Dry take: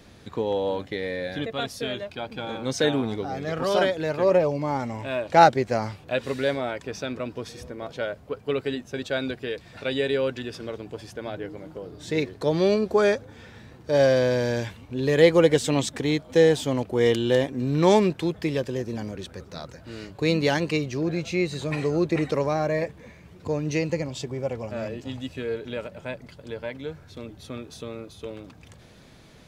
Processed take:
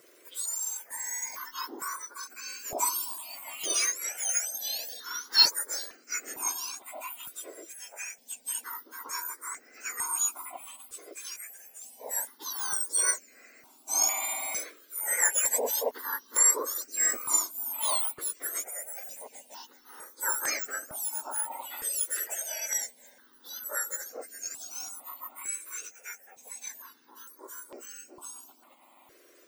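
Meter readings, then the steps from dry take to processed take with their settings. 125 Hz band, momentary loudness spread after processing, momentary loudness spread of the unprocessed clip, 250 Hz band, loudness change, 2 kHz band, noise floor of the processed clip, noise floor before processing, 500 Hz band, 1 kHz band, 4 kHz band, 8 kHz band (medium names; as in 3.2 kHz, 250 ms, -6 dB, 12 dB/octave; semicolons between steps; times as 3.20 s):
under -35 dB, 19 LU, 18 LU, -27.5 dB, -4.5 dB, -6.0 dB, -59 dBFS, -50 dBFS, -20.5 dB, -11.0 dB, +1.0 dB, +15.5 dB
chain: spectrum inverted on a logarithmic axis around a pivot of 1.9 kHz; stepped phaser 2.2 Hz 230–3500 Hz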